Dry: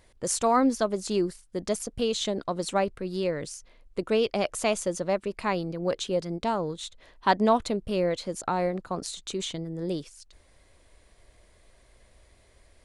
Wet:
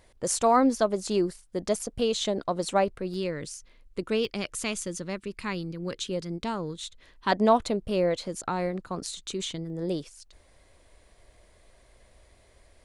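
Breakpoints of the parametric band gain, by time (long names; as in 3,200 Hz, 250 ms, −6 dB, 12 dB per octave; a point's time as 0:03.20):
parametric band 680 Hz 1.1 octaves
+2.5 dB
from 0:03.14 −7 dB
from 0:04.25 −14.5 dB
from 0:06.08 −8.5 dB
from 0:07.32 +2 dB
from 0:08.28 −4.5 dB
from 0:09.70 +2.5 dB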